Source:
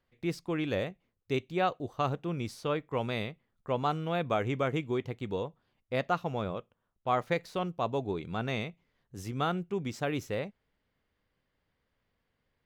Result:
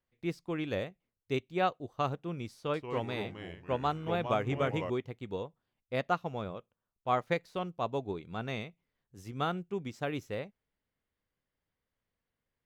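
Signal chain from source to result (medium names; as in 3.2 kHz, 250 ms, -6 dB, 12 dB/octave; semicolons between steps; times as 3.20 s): 2.57–4.90 s: ever faster or slower copies 166 ms, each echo -3 st, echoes 3, each echo -6 dB; upward expansion 1.5:1, over -43 dBFS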